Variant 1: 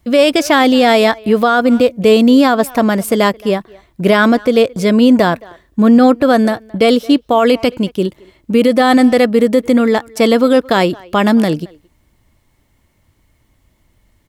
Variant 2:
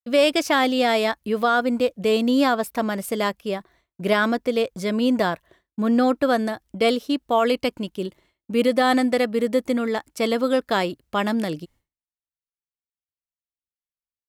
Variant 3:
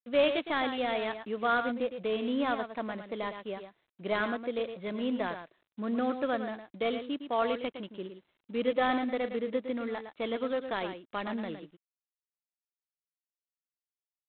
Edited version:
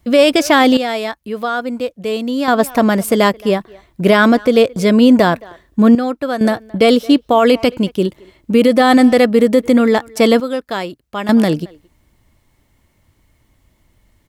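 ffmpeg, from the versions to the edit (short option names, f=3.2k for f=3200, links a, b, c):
-filter_complex "[1:a]asplit=3[a][b][c];[0:a]asplit=4[d][e][f][g];[d]atrim=end=0.772[h];[a]atrim=start=0.768:end=2.482[i];[e]atrim=start=2.478:end=5.952[j];[b]atrim=start=5.948:end=6.412[k];[f]atrim=start=6.408:end=10.402[l];[c]atrim=start=10.398:end=11.292[m];[g]atrim=start=11.288[n];[h][i]acrossfade=d=0.004:c1=hsin:c2=hsin[o];[o][j]acrossfade=d=0.004:c1=hsin:c2=hsin[p];[p][k]acrossfade=d=0.004:c1=hsin:c2=hsin[q];[q][l]acrossfade=d=0.004:c1=hsin:c2=hsin[r];[r][m]acrossfade=d=0.004:c1=hsin:c2=hsin[s];[s][n]acrossfade=d=0.004:c1=hsin:c2=hsin"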